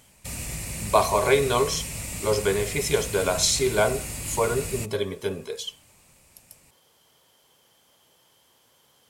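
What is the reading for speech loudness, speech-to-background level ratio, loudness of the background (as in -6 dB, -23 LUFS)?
-25.0 LUFS, 7.5 dB, -32.5 LUFS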